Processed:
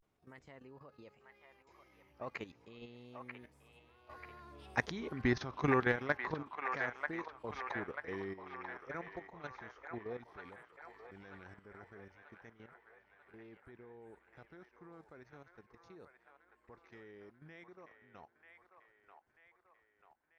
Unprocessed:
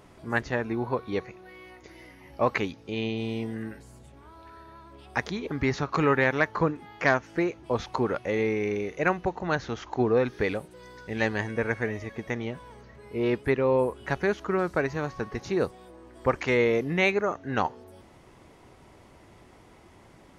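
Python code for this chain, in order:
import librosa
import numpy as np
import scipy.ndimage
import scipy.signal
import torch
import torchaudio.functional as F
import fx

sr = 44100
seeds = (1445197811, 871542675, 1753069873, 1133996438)

p1 = fx.doppler_pass(x, sr, speed_mps=28, closest_m=21.0, pass_at_s=4.98)
p2 = fx.level_steps(p1, sr, step_db=13)
p3 = fx.vibrato(p2, sr, rate_hz=0.33, depth_cents=79.0)
p4 = p3 + fx.echo_wet_bandpass(p3, sr, ms=939, feedback_pct=54, hz=1400.0, wet_db=-3.5, dry=0)
y = p4 * librosa.db_to_amplitude(-2.5)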